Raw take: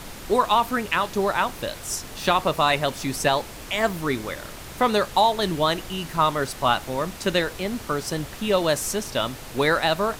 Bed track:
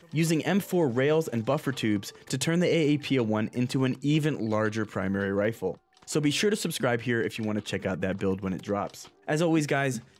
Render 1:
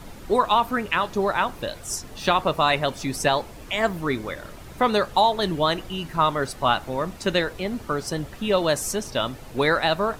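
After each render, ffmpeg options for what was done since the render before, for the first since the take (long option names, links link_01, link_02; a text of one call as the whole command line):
ffmpeg -i in.wav -af "afftdn=noise_reduction=9:noise_floor=-39" out.wav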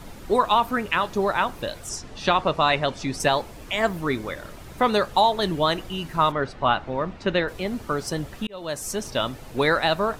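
ffmpeg -i in.wav -filter_complex "[0:a]asettb=1/sr,asplit=3[link_01][link_02][link_03];[link_01]atrim=end=1.894[link_04];[link_02]atrim=start=1.89:end=3.2,asetpts=PTS-STARTPTS,afade=type=in:duration=0.004:curve=qsin,afade=type=out:start_time=1.306:duration=0.004:curve=qsin,lowpass=6600[link_05];[link_03]atrim=start=3.196[link_06];[link_04][link_05]acrossfade=duration=0.004:curve1=hsin:curve2=qsin[link_07];[link_07][link_06]acrossfade=duration=0.004:curve1=qsin:curve2=hsin,asplit=3[link_08][link_09][link_10];[link_08]afade=type=out:start_time=6.31:duration=0.02[link_11];[link_09]lowpass=3200,afade=type=in:start_time=6.31:duration=0.02,afade=type=out:start_time=7.47:duration=0.02[link_12];[link_10]afade=type=in:start_time=7.47:duration=0.02[link_13];[link_11][link_12][link_13]amix=inputs=3:normalize=0,asplit=2[link_14][link_15];[link_14]atrim=end=8.47,asetpts=PTS-STARTPTS,afade=type=out:start_time=8.466:duration=0.004:curve=hsin[link_16];[link_15]atrim=start=8.47,asetpts=PTS-STARTPTS,afade=type=in:duration=0.59[link_17];[link_16][link_17]concat=n=2:v=0:a=1" out.wav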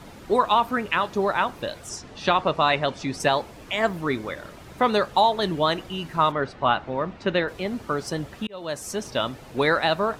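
ffmpeg -i in.wav -af "highpass=frequency=89:poles=1,highshelf=frequency=7900:gain=-7.5" out.wav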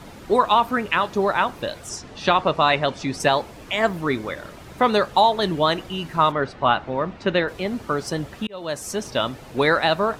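ffmpeg -i in.wav -af "volume=2.5dB" out.wav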